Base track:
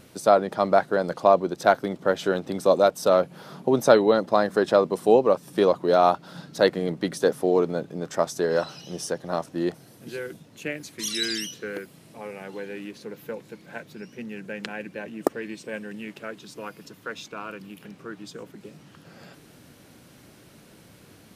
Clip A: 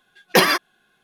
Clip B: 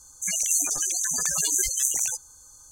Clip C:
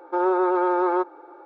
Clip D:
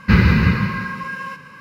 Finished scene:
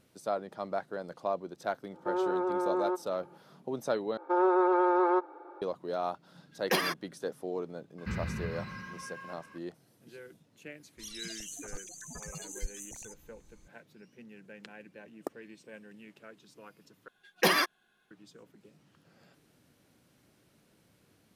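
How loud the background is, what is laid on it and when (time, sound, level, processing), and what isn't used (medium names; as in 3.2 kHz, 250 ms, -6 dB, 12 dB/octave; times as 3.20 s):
base track -15 dB
1.93 s: add C -12.5 dB + bass shelf 280 Hz +11 dB
4.17 s: replace with C -4 dB
6.36 s: add A -13.5 dB
7.98 s: add D -14 dB + compression 1.5:1, threshold -33 dBFS
10.97 s: add B -12 dB + tilt EQ -3.5 dB/octave
17.08 s: replace with A -8 dB + peak limiter -6 dBFS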